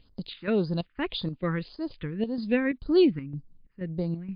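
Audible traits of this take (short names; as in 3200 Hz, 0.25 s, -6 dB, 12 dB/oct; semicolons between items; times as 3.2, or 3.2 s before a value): phasing stages 4, 1.8 Hz, lowest notch 640–2600 Hz; chopped level 2.1 Hz, depth 60%, duty 70%; MP3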